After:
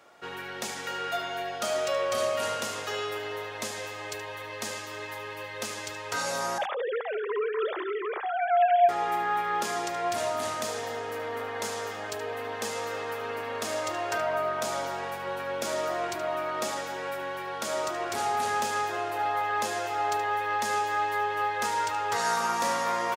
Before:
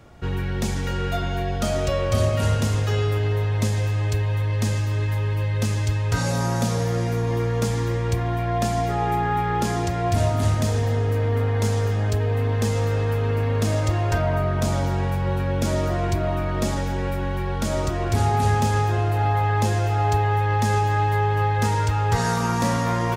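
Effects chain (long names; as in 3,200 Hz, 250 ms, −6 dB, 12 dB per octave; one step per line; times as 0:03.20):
0:06.58–0:08.89: three sine waves on the formant tracks
high-pass filter 530 Hz 12 dB per octave
parametric band 1,300 Hz +2 dB 0.27 octaves
single-tap delay 74 ms −12 dB
level −2 dB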